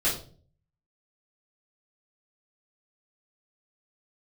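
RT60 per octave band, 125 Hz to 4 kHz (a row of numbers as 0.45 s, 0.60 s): 0.75 s, 0.60 s, 0.50 s, 0.35 s, 0.30 s, 0.35 s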